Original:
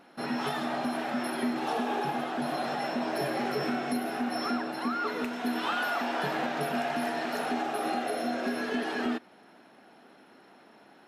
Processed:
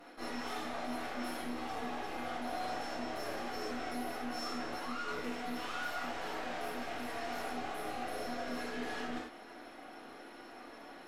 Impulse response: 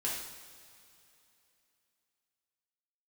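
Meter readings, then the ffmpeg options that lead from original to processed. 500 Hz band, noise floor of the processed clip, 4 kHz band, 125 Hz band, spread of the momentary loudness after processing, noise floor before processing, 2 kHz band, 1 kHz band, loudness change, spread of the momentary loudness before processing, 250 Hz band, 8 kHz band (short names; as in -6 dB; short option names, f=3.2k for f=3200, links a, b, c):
-9.0 dB, -52 dBFS, -6.5 dB, -10.5 dB, 12 LU, -57 dBFS, -7.5 dB, -8.0 dB, -8.5 dB, 2 LU, -10.5 dB, -4.5 dB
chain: -filter_complex "[0:a]highpass=f=230:w=0.5412,highpass=f=230:w=1.3066,areverse,acompressor=threshold=-40dB:ratio=8,areverse,aeval=exprs='(tanh(200*val(0)+0.75)-tanh(0.75))/200':c=same[a];[1:a]atrim=start_sample=2205,atrim=end_sample=3528,asetrate=31752,aresample=44100[b];[a][b]afir=irnorm=-1:irlink=0,volume=4dB"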